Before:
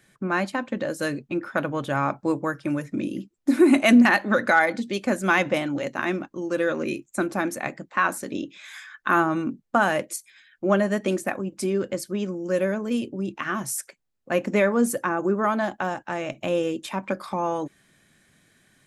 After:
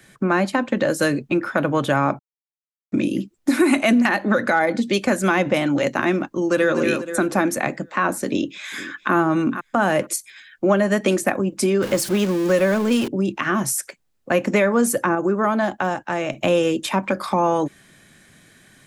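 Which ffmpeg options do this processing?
-filter_complex "[0:a]asplit=2[s0][s1];[s1]afade=t=in:st=6.36:d=0.01,afade=t=out:st=6.77:d=0.01,aecho=0:1:240|480|720|960|1200:0.421697|0.168679|0.0674714|0.0269886|0.0107954[s2];[s0][s2]amix=inputs=2:normalize=0,asplit=2[s3][s4];[s4]afade=t=in:st=8.26:d=0.01,afade=t=out:st=9.14:d=0.01,aecho=0:1:460|920:0.133352|0.0200028[s5];[s3][s5]amix=inputs=2:normalize=0,asettb=1/sr,asplit=3[s6][s7][s8];[s6]atrim=end=11.824[s9];[s7]atrim=start=11.82:end=13.08,asetpts=PTS-STARTPTS,afade=t=in:d=0.004:c=qsin,afade=t=out:st=1.256:d=0.004:c=qsin,aeval=exprs='val(0)+0.5*0.0188*sgn(val(0))':c=same[s10];[s8]atrim=start=13.076[s11];[s9][s10]acrossfade=d=0.004:c1=hsin:c2=qsin[s12];[s12][s11]acrossfade=d=0.004:c1=qsin:c2=hsin,asplit=5[s13][s14][s15][s16][s17];[s13]atrim=end=2.19,asetpts=PTS-STARTPTS,afade=t=out:st=2.186:d=0.004:c=hsin[s18];[s14]atrim=start=2.19:end=2.92,asetpts=PTS-STARTPTS,volume=0[s19];[s15]atrim=start=2.92:end=15.152,asetpts=PTS-STARTPTS,afade=t=in:d=0.004:c=hsin[s20];[s16]atrim=start=15.148:end=16.332,asetpts=PTS-STARTPTS,volume=0.631[s21];[s17]atrim=start=16.328[s22];[s18][s19][s20]concat=n=3:v=0:a=1[s23];[s23][s21]acrossfade=d=0.004:c1=hsin:c2=hsin[s24];[s24][s22]acrossfade=d=0.004:c1=hsin:c2=hsin,acrossover=split=170|690[s25][s26][s27];[s25]acompressor=threshold=0.01:ratio=4[s28];[s26]acompressor=threshold=0.0398:ratio=4[s29];[s27]acompressor=threshold=0.0316:ratio=4[s30];[s28][s29][s30]amix=inputs=3:normalize=0,alimiter=level_in=5.96:limit=0.891:release=50:level=0:latency=1,volume=0.501"

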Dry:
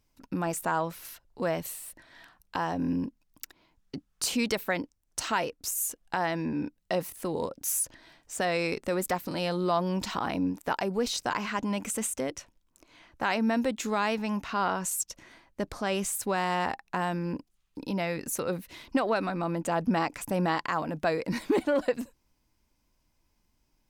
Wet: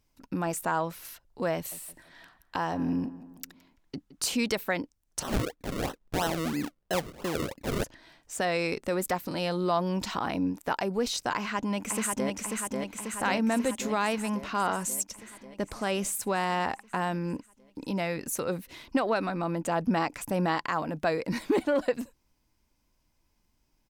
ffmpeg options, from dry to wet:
-filter_complex "[0:a]asettb=1/sr,asplit=3[s0][s1][s2];[s0]atrim=end=1.554[s3];[s1]atrim=start=1.55:end=4.25,asetpts=PTS-STARTPTS,afade=t=in:d=0.004:c=qsin,afade=t=out:st=2.696:d=0.004:c=qsin,asplit=2[s4][s5];[s5]adelay=167,lowpass=f=2300:p=1,volume=0.158,asplit=2[s6][s7];[s7]adelay=167,lowpass=f=2300:p=1,volume=0.48,asplit=2[s8][s9];[s9]adelay=167,lowpass=f=2300:p=1,volume=0.48,asplit=2[s10][s11];[s11]adelay=167,lowpass=f=2300:p=1,volume=0.48[s12];[s4][s6][s8][s10][s12]amix=inputs=5:normalize=0,atrim=end_sample=119070[s13];[s2]atrim=start=4.246[s14];[s3][s13]acrossfade=d=0.004:c1=hsin:c2=qsin[s15];[s15][s14]acrossfade=d=0.004:c1=qsin:c2=hsin,asplit=3[s16][s17][s18];[s16]afade=t=out:st=5.21:d=0.02[s19];[s17]acrusher=samples=37:mix=1:aa=0.000001:lfo=1:lforange=37:lforate=3,afade=t=in:st=5.21:d=0.02,afade=t=out:st=7.83:d=0.02[s20];[s18]afade=t=in:st=7.83:d=0.02[s21];[s19][s20][s21]amix=inputs=3:normalize=0,asplit=2[s22][s23];[s23]afade=t=in:st=11.36:d=0.01,afade=t=out:st=12.35:d=0.01,aecho=0:1:540|1080|1620|2160|2700|3240|3780|4320|4860|5400|5940|6480:0.707946|0.495562|0.346893|0.242825|0.169978|0.118984|0.0832891|0.0583024|0.0408117|0.0285682|0.0199977|0.0139984[s24];[s22][s24]amix=inputs=2:normalize=0"

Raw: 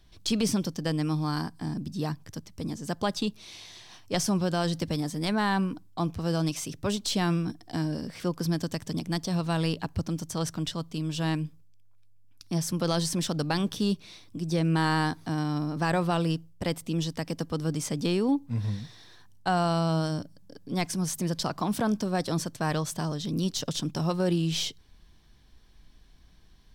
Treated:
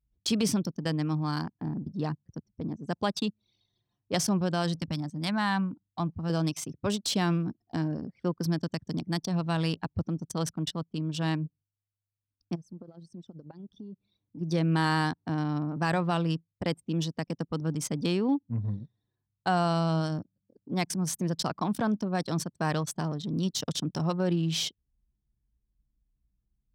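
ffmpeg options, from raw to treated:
-filter_complex "[0:a]asettb=1/sr,asplit=3[s0][s1][s2];[s0]atrim=end=4.804[s3];[s1]atrim=start=4.8:end=6.3,asetpts=PTS-STARTPTS,afade=t=in:d=0.004:c=qsin,afade=t=out:st=1.496:d=0.004:c=qsin,equalizer=f=430:t=o:w=0.55:g=-14[s4];[s2]atrim=start=6.296[s5];[s3][s4]acrossfade=d=0.004:c1=hsin:c2=qsin[s6];[s6][s5]acrossfade=d=0.004:c1=qsin:c2=hsin,asplit=3[s7][s8][s9];[s7]afade=t=out:st=12.54:d=0.02[s10];[s8]acompressor=threshold=0.0141:ratio=10:attack=3.2:release=140:knee=1:detection=peak,afade=t=in:st=12.54:d=0.02,afade=t=out:st=14.37:d=0.02[s11];[s9]afade=t=in:st=14.37:d=0.02[s12];[s10][s11][s12]amix=inputs=3:normalize=0,adynamicequalizer=threshold=0.0112:dfrequency=450:dqfactor=1.2:tfrequency=450:tqfactor=1.2:attack=5:release=100:ratio=0.375:range=2:mode=cutabove:tftype=bell,anlmdn=6.31,highpass=83"

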